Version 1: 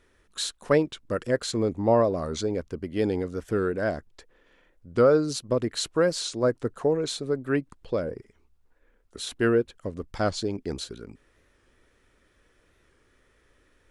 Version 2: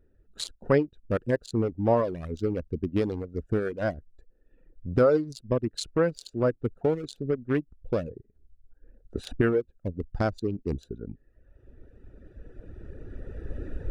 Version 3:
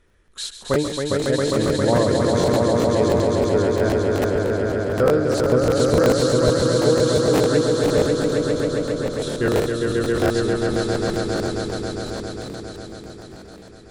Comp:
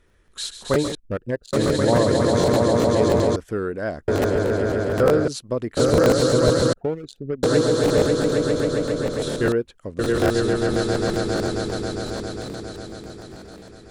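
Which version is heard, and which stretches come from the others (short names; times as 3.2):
3
0.95–1.53 from 2
3.36–4.08 from 1
5.28–5.77 from 1
6.73–7.43 from 2
9.52–9.99 from 1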